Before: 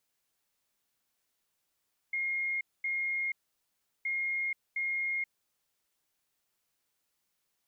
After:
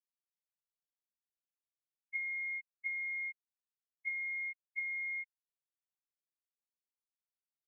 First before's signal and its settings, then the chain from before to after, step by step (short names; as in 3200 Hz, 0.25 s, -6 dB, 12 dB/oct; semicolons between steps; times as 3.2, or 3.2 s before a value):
beep pattern sine 2140 Hz, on 0.48 s, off 0.23 s, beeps 2, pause 0.73 s, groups 2, -29.5 dBFS
envelope flanger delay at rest 11.9 ms, full sweep at -32 dBFS; spectral expander 2.5:1